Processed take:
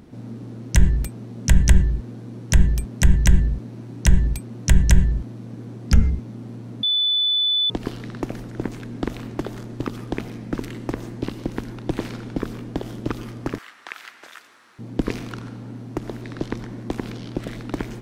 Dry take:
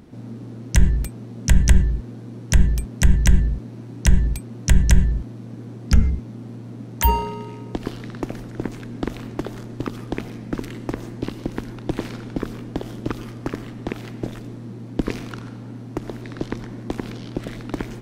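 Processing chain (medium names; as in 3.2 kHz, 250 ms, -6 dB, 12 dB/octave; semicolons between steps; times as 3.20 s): 6.83–7.70 s: bleep 3.49 kHz -17 dBFS; 13.58–14.79 s: resonant high-pass 1.4 kHz, resonance Q 1.8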